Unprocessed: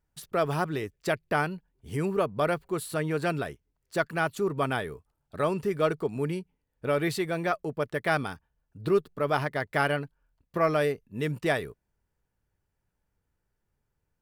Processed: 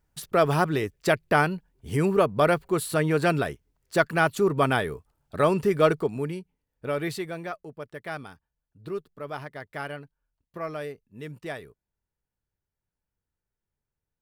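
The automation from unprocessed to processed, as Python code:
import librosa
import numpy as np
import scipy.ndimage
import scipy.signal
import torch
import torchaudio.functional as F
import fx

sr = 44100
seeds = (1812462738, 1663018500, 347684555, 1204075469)

y = fx.gain(x, sr, db=fx.line((5.93, 5.5), (6.33, -2.0), (7.13, -2.0), (7.65, -9.0)))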